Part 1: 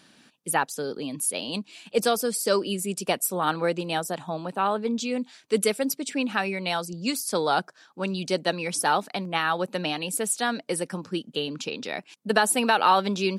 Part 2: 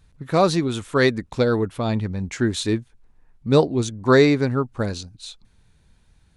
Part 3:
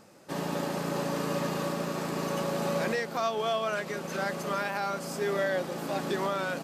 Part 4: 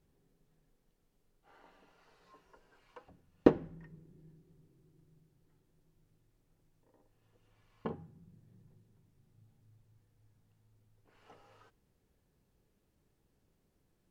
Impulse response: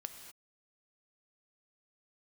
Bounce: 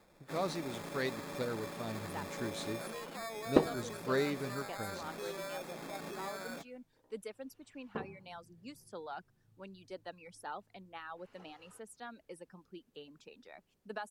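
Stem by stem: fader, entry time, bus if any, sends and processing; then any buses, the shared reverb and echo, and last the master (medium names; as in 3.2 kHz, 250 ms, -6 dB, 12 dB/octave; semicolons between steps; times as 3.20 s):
-18.0 dB, 1.60 s, no send, reverb removal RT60 1.1 s; treble shelf 2.8 kHz -12 dB; vibrato 0.63 Hz 11 cents
-17.0 dB, 0.00 s, no send, none
-9.0 dB, 0.00 s, send -18 dB, peak limiter -25.5 dBFS, peak gain reduction 6 dB; sample-and-hold 15×
-1.0 dB, 0.10 s, send -15 dB, none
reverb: on, pre-delay 3 ms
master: bass shelf 280 Hz -5 dB; wow and flutter 18 cents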